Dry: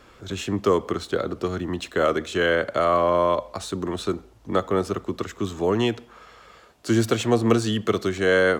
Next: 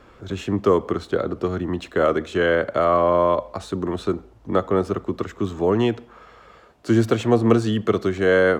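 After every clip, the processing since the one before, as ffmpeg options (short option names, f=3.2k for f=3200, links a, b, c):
-af "highshelf=f=2.7k:g=-11,volume=3dB"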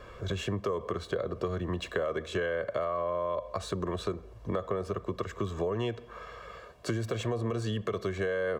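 -af "aecho=1:1:1.8:0.61,alimiter=limit=-11dB:level=0:latency=1:release=49,acompressor=threshold=-30dB:ratio=4"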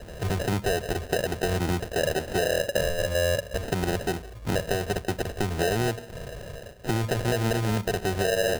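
-filter_complex "[0:a]asplit=2[a][b];[b]alimiter=level_in=2dB:limit=-24dB:level=0:latency=1,volume=-2dB,volume=1dB[c];[a][c]amix=inputs=2:normalize=0,acrusher=samples=39:mix=1:aa=0.000001,volume=1dB"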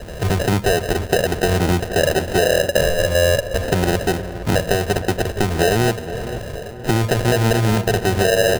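-filter_complex "[0:a]asplit=2[a][b];[b]adelay=469,lowpass=f=2k:p=1,volume=-12.5dB,asplit=2[c][d];[d]adelay=469,lowpass=f=2k:p=1,volume=0.5,asplit=2[e][f];[f]adelay=469,lowpass=f=2k:p=1,volume=0.5,asplit=2[g][h];[h]adelay=469,lowpass=f=2k:p=1,volume=0.5,asplit=2[i][j];[j]adelay=469,lowpass=f=2k:p=1,volume=0.5[k];[a][c][e][g][i][k]amix=inputs=6:normalize=0,volume=8.5dB"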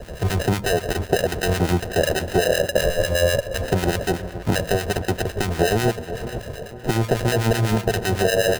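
-filter_complex "[0:a]acrossover=split=1100[a][b];[a]aeval=exprs='val(0)*(1-0.7/2+0.7/2*cos(2*PI*8*n/s))':c=same[c];[b]aeval=exprs='val(0)*(1-0.7/2-0.7/2*cos(2*PI*8*n/s))':c=same[d];[c][d]amix=inputs=2:normalize=0"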